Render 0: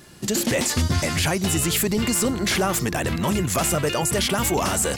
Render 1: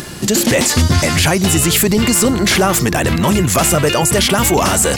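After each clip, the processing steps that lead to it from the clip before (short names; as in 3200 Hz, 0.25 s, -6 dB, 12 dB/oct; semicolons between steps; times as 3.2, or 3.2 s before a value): in parallel at +0.5 dB: limiter -25 dBFS, peak gain reduction 11.5 dB; on the sum: upward compressor, threshold -29 dBFS; gain +6.5 dB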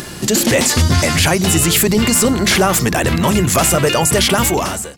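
ending faded out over 0.60 s; notches 50/100/150/200/250/300/350 Hz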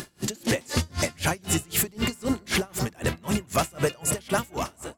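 tape echo 0.172 s, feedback 58%, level -10.5 dB, low-pass 1400 Hz; dB-linear tremolo 3.9 Hz, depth 30 dB; gain -7.5 dB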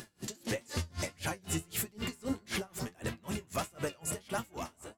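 flange 1.6 Hz, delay 8.4 ms, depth 4.3 ms, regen +51%; gain -6.5 dB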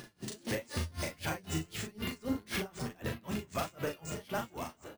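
doubler 38 ms -4.5 dB; careless resampling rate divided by 3×, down filtered, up hold; gain -1 dB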